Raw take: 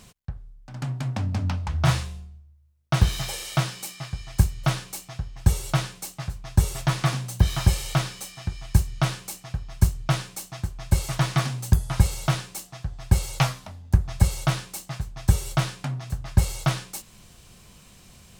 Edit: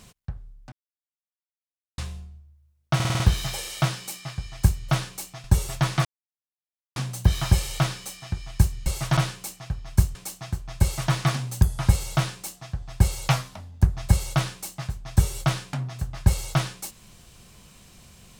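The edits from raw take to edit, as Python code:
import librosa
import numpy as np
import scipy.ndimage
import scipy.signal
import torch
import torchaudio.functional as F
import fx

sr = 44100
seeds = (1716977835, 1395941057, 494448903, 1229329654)

y = fx.edit(x, sr, fx.silence(start_s=0.72, length_s=1.26),
    fx.stutter(start_s=2.95, slice_s=0.05, count=6),
    fx.cut(start_s=5.19, length_s=1.31),
    fx.insert_silence(at_s=7.11, length_s=0.91),
    fx.cut(start_s=9.99, length_s=0.27),
    fx.duplicate(start_s=10.94, length_s=0.31, to_s=9.01), tone=tone)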